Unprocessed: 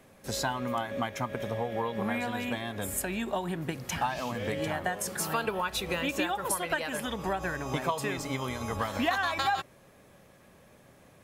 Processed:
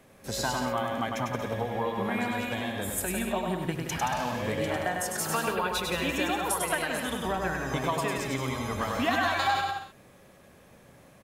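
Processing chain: bouncing-ball echo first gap 100 ms, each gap 0.75×, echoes 5

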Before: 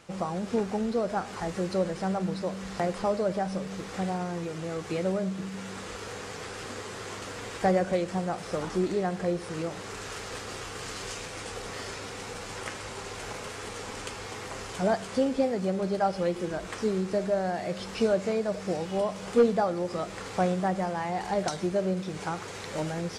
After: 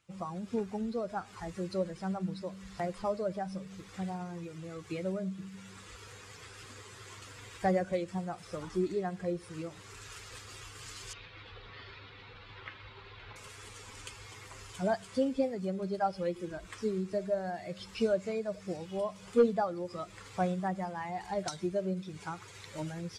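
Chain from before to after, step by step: expander on every frequency bin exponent 1.5; 11.13–13.36 s: Chebyshev low-pass 4 kHz, order 4; trim -2.5 dB

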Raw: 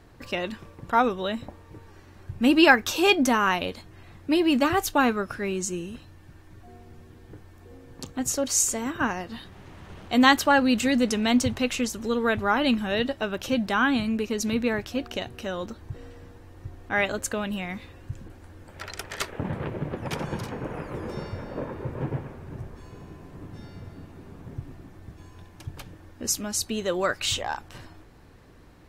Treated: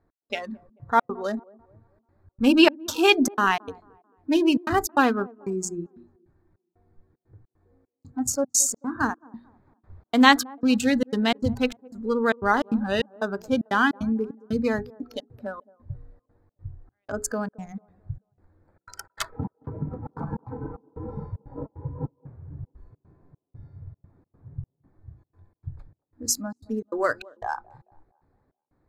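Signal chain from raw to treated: local Wiener filter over 15 samples; spectral noise reduction 17 dB; hum notches 60/120/180/240/300/360/420 Hz; trance gate "x..xxxx.xx.xx" 151 bpm -60 dB; 21.46–22.20 s: comb of notches 220 Hz; feedback echo behind a band-pass 220 ms, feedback 37%, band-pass 470 Hz, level -22 dB; trim +2.5 dB

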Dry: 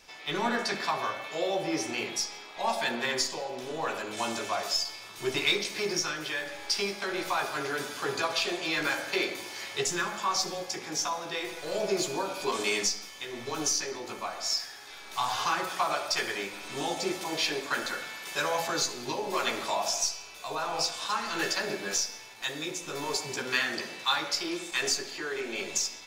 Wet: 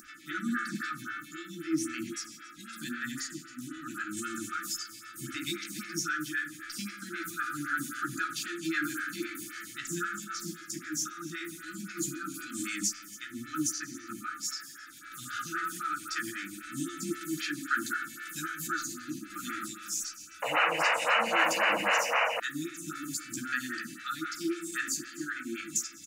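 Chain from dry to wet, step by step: high-pass 130 Hz 6 dB/octave; high-order bell 3.4 kHz -11 dB; delay 279 ms -20.5 dB; in parallel at +2 dB: peak limiter -27 dBFS, peak gain reduction 11.5 dB; on the sum: FFT band-reject 350–1200 Hz; upward compressor, threshold -43 dBFS; painted sound noise, 20.42–22.40 s, 450–3000 Hz -24 dBFS; lamp-driven phase shifter 3.8 Hz

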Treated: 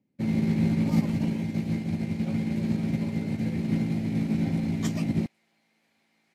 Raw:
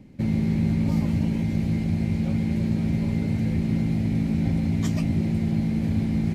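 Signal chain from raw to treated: high-pass 150 Hz 12 dB/octave, from 5.26 s 1 kHz; upward expansion 2.5:1, over -41 dBFS; trim +5 dB

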